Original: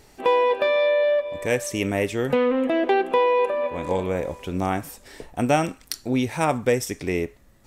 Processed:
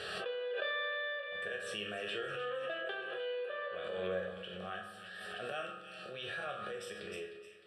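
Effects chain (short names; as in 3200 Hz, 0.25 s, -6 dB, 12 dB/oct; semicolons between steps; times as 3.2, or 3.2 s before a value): bell 1200 Hz +4.5 dB 0.24 oct; de-hum 416.3 Hz, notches 3; auto swell 0.16 s; compressor, threshold -22 dBFS, peak gain reduction 7 dB; speaker cabinet 250–8100 Hz, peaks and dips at 270 Hz -7 dB, 920 Hz -9 dB, 1700 Hz +10 dB, 3000 Hz +7 dB, 5200 Hz -5 dB; fixed phaser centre 1400 Hz, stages 8; resonator bank C#2 sus4, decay 0.41 s; split-band echo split 1700 Hz, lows 87 ms, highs 0.307 s, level -9.5 dB; on a send at -12.5 dB: reverb RT60 2.1 s, pre-delay 4 ms; on the sum: backwards sustainer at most 22 dB/s; gain +3.5 dB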